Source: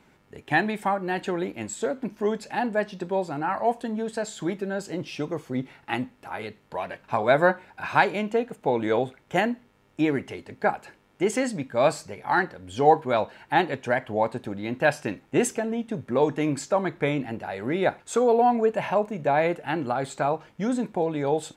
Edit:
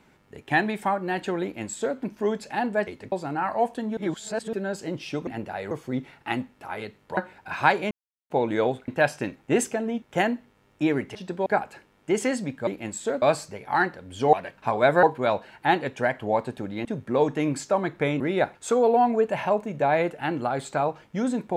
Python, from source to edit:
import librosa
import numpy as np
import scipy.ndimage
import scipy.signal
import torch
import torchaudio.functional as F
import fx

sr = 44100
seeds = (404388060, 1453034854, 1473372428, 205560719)

y = fx.edit(x, sr, fx.duplicate(start_s=1.43, length_s=0.55, to_s=11.79),
    fx.swap(start_s=2.87, length_s=0.31, other_s=10.33, other_length_s=0.25),
    fx.reverse_span(start_s=4.03, length_s=0.56),
    fx.move(start_s=6.79, length_s=0.7, to_s=12.9),
    fx.silence(start_s=8.23, length_s=0.39),
    fx.move(start_s=14.72, length_s=1.14, to_s=9.2),
    fx.move(start_s=17.21, length_s=0.44, to_s=5.33), tone=tone)